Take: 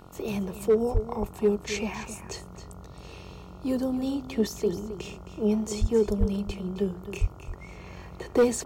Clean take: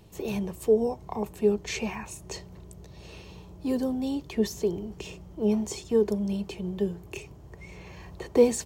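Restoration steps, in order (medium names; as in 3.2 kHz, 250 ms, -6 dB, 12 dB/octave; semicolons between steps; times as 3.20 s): clip repair -14.5 dBFS; de-hum 45.9 Hz, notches 31; de-plosive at 0.93/5.80/6.19/7.20 s; inverse comb 266 ms -12 dB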